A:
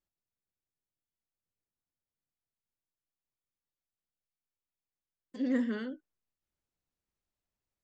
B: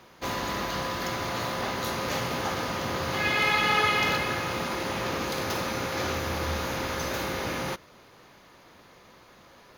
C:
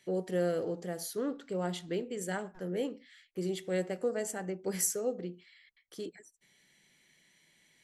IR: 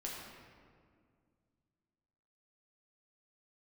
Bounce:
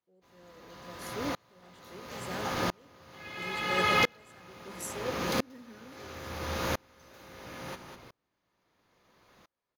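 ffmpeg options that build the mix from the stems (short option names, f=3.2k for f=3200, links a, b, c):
-filter_complex "[0:a]volume=2.5dB[a];[1:a]volume=-6.5dB,asplit=3[b][c][d];[c]volume=-13.5dB[e];[d]volume=-11.5dB[f];[2:a]volume=-3dB[g];[3:a]atrim=start_sample=2205[h];[e][h]afir=irnorm=-1:irlink=0[i];[f]aecho=0:1:200:1[j];[a][b][g][i][j]amix=inputs=5:normalize=0,dynaudnorm=f=240:g=13:m=7dB,aeval=exprs='val(0)*pow(10,-35*if(lt(mod(-0.74*n/s,1),2*abs(-0.74)/1000),1-mod(-0.74*n/s,1)/(2*abs(-0.74)/1000),(mod(-0.74*n/s,1)-2*abs(-0.74)/1000)/(1-2*abs(-0.74)/1000))/20)':c=same"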